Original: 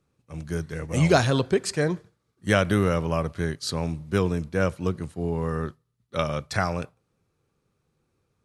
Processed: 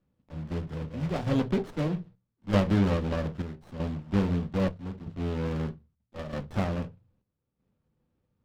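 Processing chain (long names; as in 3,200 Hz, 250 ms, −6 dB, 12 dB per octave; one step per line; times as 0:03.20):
one scale factor per block 3 bits
on a send at −6 dB: convolution reverb RT60 0.20 s, pre-delay 3 ms
on the sum: square-wave tremolo 0.79 Hz, depth 60%, duty 70%
inverse Chebyshev low-pass filter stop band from 9,400 Hz, stop band 50 dB
notch filter 1,500 Hz, Q 20
windowed peak hold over 17 samples
level −7 dB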